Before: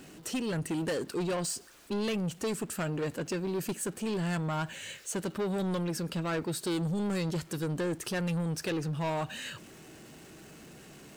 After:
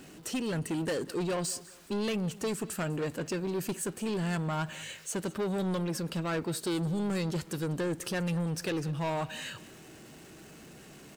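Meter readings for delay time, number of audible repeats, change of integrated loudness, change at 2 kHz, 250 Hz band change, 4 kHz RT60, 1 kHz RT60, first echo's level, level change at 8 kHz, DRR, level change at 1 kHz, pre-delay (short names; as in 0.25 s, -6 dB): 0.199 s, 2, 0.0 dB, 0.0 dB, 0.0 dB, none, none, -20.0 dB, 0.0 dB, none, 0.0 dB, none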